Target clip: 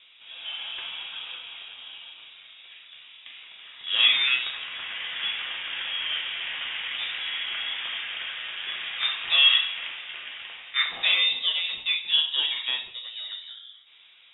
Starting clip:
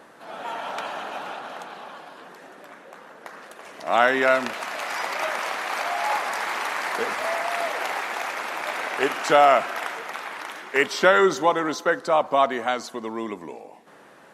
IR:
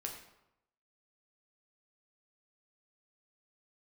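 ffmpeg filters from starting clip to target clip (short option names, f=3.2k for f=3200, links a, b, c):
-filter_complex "[1:a]atrim=start_sample=2205,asetrate=66150,aresample=44100[a];[0:a][a]afir=irnorm=-1:irlink=0,lowpass=f=3.4k:t=q:w=0.5098,lowpass=f=3.4k:t=q:w=0.6013,lowpass=f=3.4k:t=q:w=0.9,lowpass=f=3.4k:t=q:w=2.563,afreqshift=-4000,asettb=1/sr,asplit=3[b][c][d];[b]atrim=end=1.814[e];[c]atrim=start=1.81:end=4.23,asetpts=PTS-STARTPTS,afade=t=in:d=0.004:c=qsin,afade=t=out:st=2.416:d=0.004:c=qsin,asplit=2[f][g];[g]adelay=43,volume=-5dB[h];[f][h]amix=inputs=2:normalize=0,atrim=end_sample=106722[i];[d]atrim=start=4.226[j];[e][i]acrossfade=d=0.004:c1=hsin:c2=qsin[k];[k][j]acrossfade=d=0.004:c1=qsin:c2=hsin"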